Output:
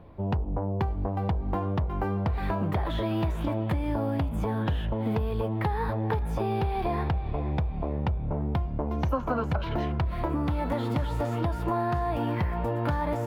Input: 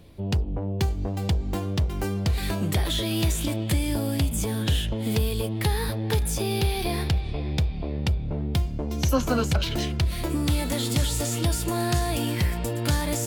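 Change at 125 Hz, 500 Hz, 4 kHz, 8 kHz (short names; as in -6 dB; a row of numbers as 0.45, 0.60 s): -3.0 dB, -0.5 dB, -15.0 dB, under -25 dB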